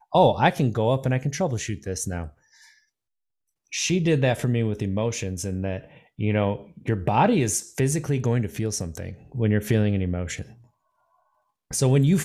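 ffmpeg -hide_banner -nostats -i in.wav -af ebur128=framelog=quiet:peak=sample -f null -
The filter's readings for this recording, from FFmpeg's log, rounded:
Integrated loudness:
  I:         -24.2 LUFS
  Threshold: -35.0 LUFS
Loudness range:
  LRA:         3.6 LU
  Threshold: -45.8 LUFS
  LRA low:   -28.0 LUFS
  LRA high:  -24.4 LUFS
Sample peak:
  Peak:       -4.5 dBFS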